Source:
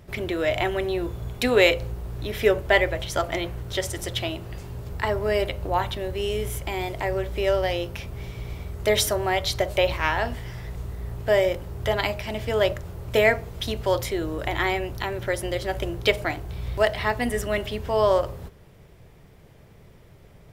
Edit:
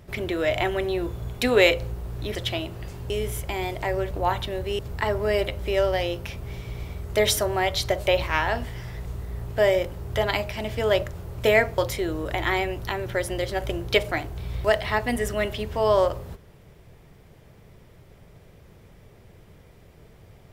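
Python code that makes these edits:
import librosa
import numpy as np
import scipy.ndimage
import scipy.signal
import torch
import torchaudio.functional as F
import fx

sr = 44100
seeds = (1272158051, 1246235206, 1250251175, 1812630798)

y = fx.edit(x, sr, fx.cut(start_s=2.35, length_s=1.7),
    fx.swap(start_s=4.8, length_s=0.8, other_s=6.28, other_length_s=1.01),
    fx.cut(start_s=13.48, length_s=0.43), tone=tone)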